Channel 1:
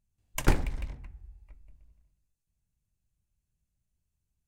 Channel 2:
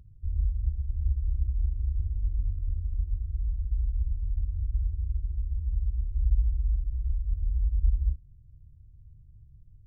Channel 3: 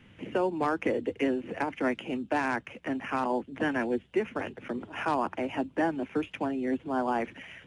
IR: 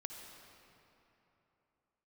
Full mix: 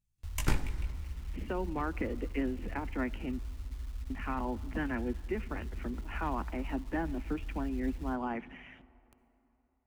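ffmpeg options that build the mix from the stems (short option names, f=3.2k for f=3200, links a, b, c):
-filter_complex "[0:a]flanger=delay=16.5:depth=3:speed=0.54,volume=-1.5dB,asplit=2[a][b];[b]volume=-6dB[c];[1:a]acrusher=bits=6:mix=0:aa=0.000001,acrossover=split=170|2700[d][e][f];[d]acompressor=threshold=-33dB:ratio=4[g];[e]acompressor=threshold=-57dB:ratio=4[h];[f]acompressor=threshold=-55dB:ratio=4[i];[g][h][i]amix=inputs=3:normalize=0,volume=-7.5dB,asplit=2[j][k];[k]volume=-4.5dB[l];[2:a]acrossover=split=3000[m][n];[n]acompressor=threshold=-57dB:ratio=4:attack=1:release=60[o];[m][o]amix=inputs=2:normalize=0,highpass=150,bass=f=250:g=6,treble=f=4k:g=-9,adelay=1150,volume=-4.5dB,asplit=3[p][q][r];[p]atrim=end=3.39,asetpts=PTS-STARTPTS,afade=t=out:st=3.386:d=0.004:c=hsin[s];[q]atrim=start=3.39:end=4.1,asetpts=PTS-STARTPTS,volume=0[t];[r]atrim=start=4.1,asetpts=PTS-STARTPTS,afade=t=in:d=0.004:c=hsin[u];[s][t][u]concat=n=3:v=0:a=1,asplit=2[v][w];[w]volume=-13.5dB[x];[3:a]atrim=start_sample=2205[y];[c][l][x]amix=inputs=3:normalize=0[z];[z][y]afir=irnorm=-1:irlink=0[aa];[a][j][v][aa]amix=inputs=4:normalize=0,equalizer=f=540:w=0.87:g=-7.5,bandreject=f=1.6k:w=21"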